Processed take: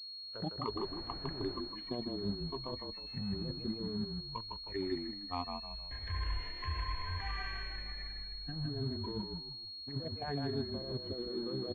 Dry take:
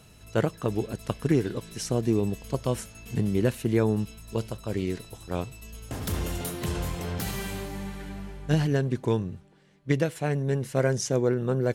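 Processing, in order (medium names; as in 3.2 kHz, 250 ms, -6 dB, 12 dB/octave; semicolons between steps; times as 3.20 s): low-pass that closes with the level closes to 810 Hz, closed at -20 dBFS; spectral noise reduction 24 dB; bass shelf 370 Hz -11.5 dB; compressor with a negative ratio -40 dBFS, ratio -1; in parallel at -10.5 dB: bit crusher 7-bit; 0.78–1.56 s: on the sum: added noise pink -48 dBFS; distance through air 460 m; on a send: frequency-shifting echo 156 ms, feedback 36%, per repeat -35 Hz, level -4.5 dB; on the sum: class-D stage that switches slowly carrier 4.3 kHz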